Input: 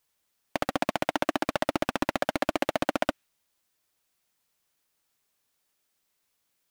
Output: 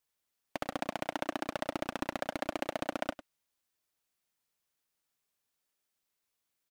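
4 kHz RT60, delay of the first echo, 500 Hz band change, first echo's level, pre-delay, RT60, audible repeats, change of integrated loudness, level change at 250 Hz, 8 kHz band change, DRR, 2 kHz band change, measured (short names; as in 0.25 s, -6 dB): none, 0.101 s, -8.0 dB, -15.0 dB, none, none, 1, -8.0 dB, -8.0 dB, -8.0 dB, none, -8.0 dB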